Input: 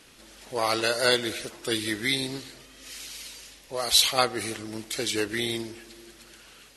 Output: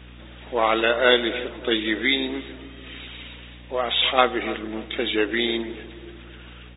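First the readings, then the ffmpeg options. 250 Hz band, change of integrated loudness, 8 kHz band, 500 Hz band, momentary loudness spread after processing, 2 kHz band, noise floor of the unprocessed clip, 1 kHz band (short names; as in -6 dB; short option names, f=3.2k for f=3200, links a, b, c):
+6.0 dB, +3.5 dB, under -40 dB, +6.0 dB, 21 LU, +6.0 dB, -53 dBFS, +6.0 dB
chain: -filter_complex "[0:a]asplit=2[a][b];[b]adelay=291,lowpass=f=830:p=1,volume=-13dB,asplit=2[c][d];[d]adelay=291,lowpass=f=830:p=1,volume=0.47,asplit=2[e][f];[f]adelay=291,lowpass=f=830:p=1,volume=0.47,asplit=2[g][h];[h]adelay=291,lowpass=f=830:p=1,volume=0.47,asplit=2[i][j];[j]adelay=291,lowpass=f=830:p=1,volume=0.47[k];[a][c][e][g][i][k]amix=inputs=6:normalize=0,afftfilt=real='re*between(b*sr/4096,210,3800)':imag='im*between(b*sr/4096,210,3800)':win_size=4096:overlap=0.75,aeval=exprs='val(0)+0.00355*(sin(2*PI*60*n/s)+sin(2*PI*2*60*n/s)/2+sin(2*PI*3*60*n/s)/3+sin(2*PI*4*60*n/s)/4+sin(2*PI*5*60*n/s)/5)':c=same,volume=6dB"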